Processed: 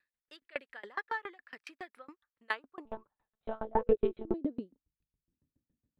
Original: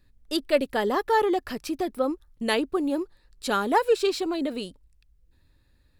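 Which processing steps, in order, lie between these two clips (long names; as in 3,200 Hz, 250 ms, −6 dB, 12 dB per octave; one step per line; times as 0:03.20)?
band-pass filter sweep 1,800 Hz → 220 Hz, 0:02.17–0:04.95
0:02.85–0:04.34: one-pitch LPC vocoder at 8 kHz 220 Hz
tremolo with a ramp in dB decaying 7.2 Hz, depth 30 dB
level +3 dB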